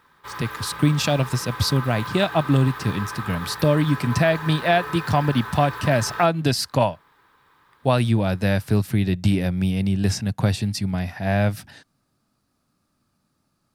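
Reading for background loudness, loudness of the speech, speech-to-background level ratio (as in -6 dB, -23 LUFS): -33.5 LUFS, -22.0 LUFS, 11.5 dB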